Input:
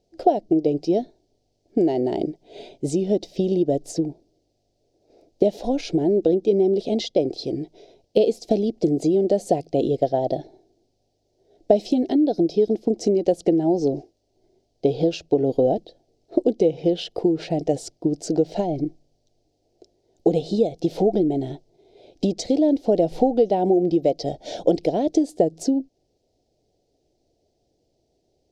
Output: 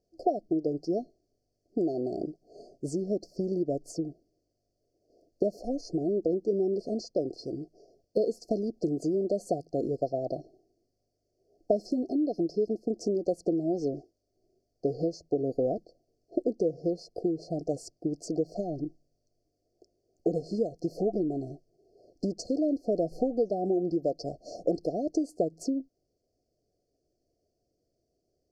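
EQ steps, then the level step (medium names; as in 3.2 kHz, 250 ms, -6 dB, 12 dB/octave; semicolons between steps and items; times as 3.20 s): brick-wall FIR band-stop 760–4200 Hz; -9.0 dB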